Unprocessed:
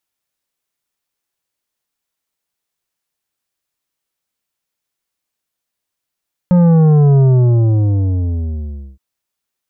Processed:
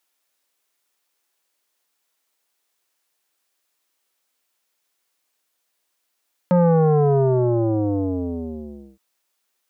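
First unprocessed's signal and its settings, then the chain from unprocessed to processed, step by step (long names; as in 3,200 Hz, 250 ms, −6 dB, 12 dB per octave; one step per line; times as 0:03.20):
bass drop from 180 Hz, over 2.47 s, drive 9.5 dB, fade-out 1.79 s, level −7.5 dB
high-pass filter 310 Hz 12 dB per octave
in parallel at +0.5 dB: brickwall limiter −21.5 dBFS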